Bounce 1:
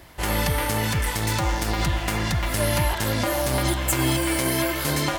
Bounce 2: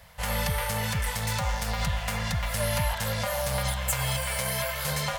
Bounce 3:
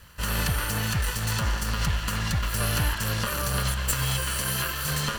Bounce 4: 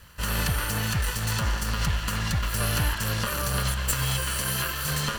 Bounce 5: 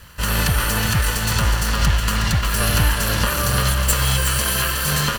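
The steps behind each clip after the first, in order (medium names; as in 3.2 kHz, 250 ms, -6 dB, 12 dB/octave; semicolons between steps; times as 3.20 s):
Chebyshev band-stop 210–470 Hz, order 3; trim -4 dB
comb filter that takes the minimum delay 0.68 ms; trim +3 dB
no audible change
delay 366 ms -7 dB; trim +7 dB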